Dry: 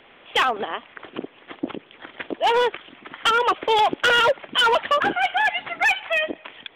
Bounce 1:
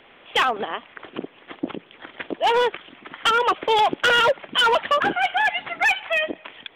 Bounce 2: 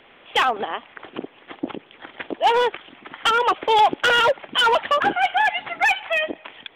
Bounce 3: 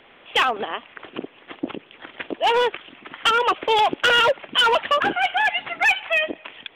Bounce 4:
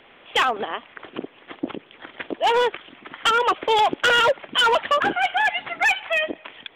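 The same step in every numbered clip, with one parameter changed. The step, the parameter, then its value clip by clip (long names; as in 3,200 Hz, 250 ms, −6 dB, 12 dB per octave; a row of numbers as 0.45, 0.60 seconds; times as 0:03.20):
dynamic equaliser, frequency: 180, 820, 2,700, 7,200 Hertz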